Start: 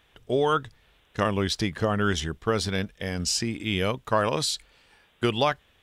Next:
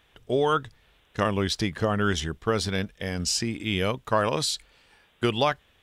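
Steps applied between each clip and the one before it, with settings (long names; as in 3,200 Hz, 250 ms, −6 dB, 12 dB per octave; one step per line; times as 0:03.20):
no processing that can be heard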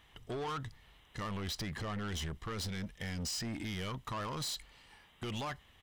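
comb filter 1 ms, depth 39%
brickwall limiter −21 dBFS, peak gain reduction 11 dB
soft clipping −33.5 dBFS, distortion −8 dB
level −1.5 dB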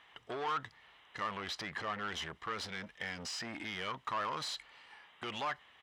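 resonant band-pass 1,400 Hz, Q 0.66
level +5.5 dB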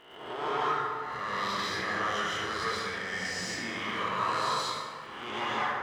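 peak hold with a rise ahead of every peak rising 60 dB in 0.91 s
dense smooth reverb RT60 2.1 s, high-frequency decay 0.45×, pre-delay 120 ms, DRR −8 dB
surface crackle 160 per second −49 dBFS
level −3.5 dB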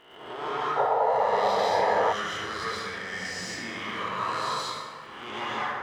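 sound drawn into the spectrogram noise, 0:00.76–0:02.13, 410–1,000 Hz −24 dBFS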